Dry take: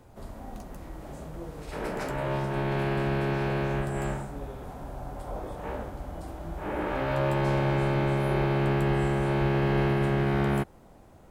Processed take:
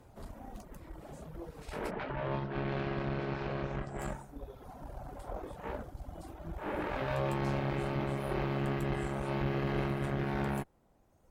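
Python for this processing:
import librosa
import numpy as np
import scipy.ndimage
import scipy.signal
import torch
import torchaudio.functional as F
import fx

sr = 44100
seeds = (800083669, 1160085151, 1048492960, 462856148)

y = fx.lowpass(x, sr, hz=fx.line((1.9, 3400.0), (3.98, 6200.0)), slope=24, at=(1.9, 3.98), fade=0.02)
y = fx.dereverb_blind(y, sr, rt60_s=1.7)
y = fx.tube_stage(y, sr, drive_db=27.0, bias=0.75)
y = y * librosa.db_to_amplitude(1.0)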